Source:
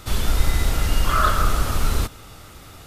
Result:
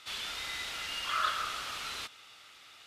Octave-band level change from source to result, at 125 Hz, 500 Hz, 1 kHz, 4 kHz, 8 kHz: -36.0 dB, -19.5 dB, -11.5 dB, -4.0 dB, -12.5 dB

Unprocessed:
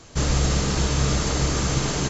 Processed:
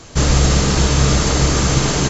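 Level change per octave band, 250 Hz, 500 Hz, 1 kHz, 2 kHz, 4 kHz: +7.5 dB, +7.5 dB, +7.5 dB, +7.5 dB, +7.5 dB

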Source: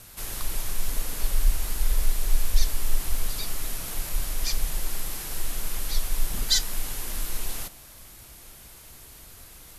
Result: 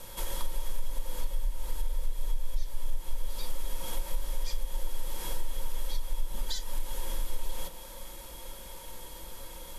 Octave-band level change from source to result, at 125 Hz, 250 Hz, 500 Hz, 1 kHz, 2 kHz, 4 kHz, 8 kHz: -6.5 dB, -7.0 dB, -1.0 dB, -2.5 dB, -10.0 dB, -10.5 dB, -11.5 dB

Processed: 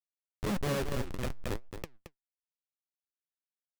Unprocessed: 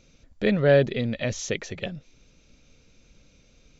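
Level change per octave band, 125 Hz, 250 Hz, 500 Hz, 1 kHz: -10.0 dB, -10.5 dB, -15.0 dB, -4.0 dB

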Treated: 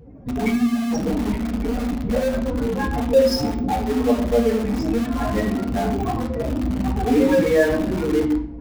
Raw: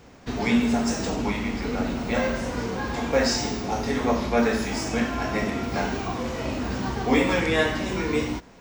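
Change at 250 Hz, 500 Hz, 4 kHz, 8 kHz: +5.0 dB, +6.0 dB, -2.5 dB, -3.5 dB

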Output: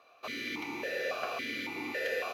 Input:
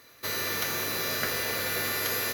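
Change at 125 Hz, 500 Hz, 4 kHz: -15.5 dB, -1.0 dB, -10.0 dB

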